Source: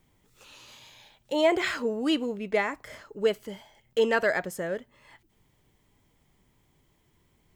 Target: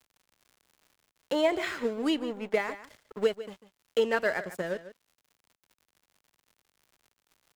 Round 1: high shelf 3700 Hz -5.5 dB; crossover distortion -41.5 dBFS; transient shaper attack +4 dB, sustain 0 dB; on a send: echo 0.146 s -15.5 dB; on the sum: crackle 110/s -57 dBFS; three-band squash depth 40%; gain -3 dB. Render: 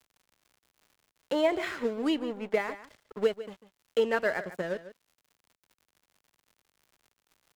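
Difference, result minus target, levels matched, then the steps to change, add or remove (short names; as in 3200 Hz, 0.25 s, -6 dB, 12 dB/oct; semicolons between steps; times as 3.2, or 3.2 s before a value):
8000 Hz band -3.0 dB
remove: high shelf 3700 Hz -5.5 dB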